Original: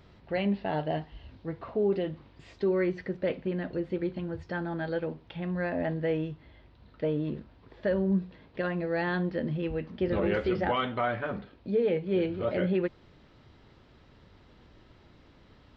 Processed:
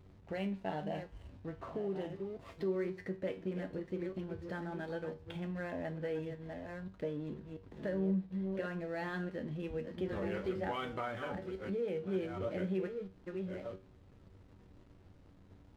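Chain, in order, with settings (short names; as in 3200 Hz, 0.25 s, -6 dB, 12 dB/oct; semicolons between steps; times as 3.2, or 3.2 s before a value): reverse delay 0.688 s, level -9.5 dB; compressor 2:1, threshold -39 dBFS, peak gain reduction 9.5 dB; backlash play -51.5 dBFS; resonator 95 Hz, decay 0.3 s, harmonics all, mix 70%; gain +4.5 dB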